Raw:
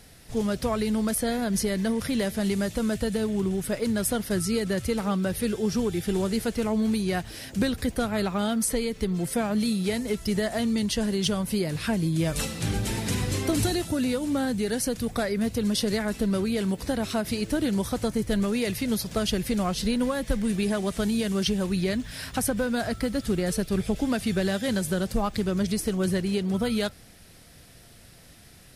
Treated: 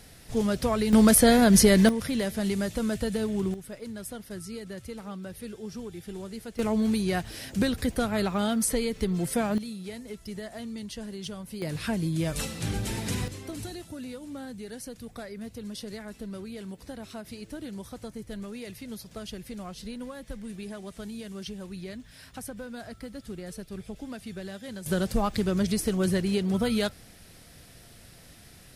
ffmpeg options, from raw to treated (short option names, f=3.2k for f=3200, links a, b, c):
-af "asetnsamples=n=441:p=0,asendcmd='0.93 volume volume 8.5dB;1.89 volume volume -2dB;3.54 volume volume -12.5dB;6.59 volume volume -0.5dB;9.58 volume volume -12dB;11.62 volume volume -3dB;13.28 volume volume -13dB;24.86 volume volume 0dB',volume=0.5dB"